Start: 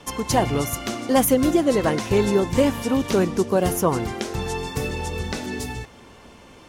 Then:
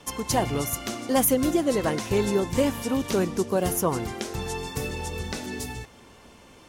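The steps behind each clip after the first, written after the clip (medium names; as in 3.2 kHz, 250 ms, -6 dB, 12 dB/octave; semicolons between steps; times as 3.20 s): treble shelf 6.2 kHz +6 dB; trim -4.5 dB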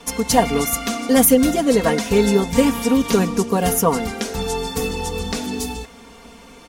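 comb 4.3 ms, depth 80%; trim +5.5 dB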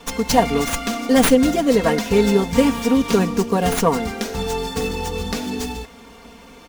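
sliding maximum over 3 samples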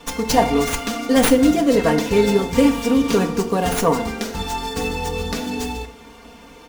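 FDN reverb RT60 0.61 s, low-frequency decay 0.9×, high-frequency decay 0.6×, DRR 6.5 dB; trim -1 dB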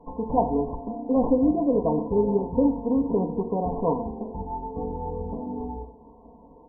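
short-mantissa float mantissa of 2-bit; brick-wall FIR low-pass 1.1 kHz; trim -6 dB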